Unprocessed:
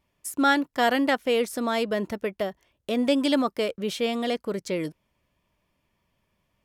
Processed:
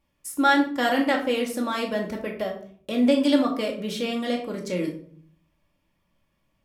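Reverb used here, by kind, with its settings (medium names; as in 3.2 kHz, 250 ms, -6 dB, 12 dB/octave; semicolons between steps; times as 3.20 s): simulated room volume 550 m³, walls furnished, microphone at 2.3 m; trim -3 dB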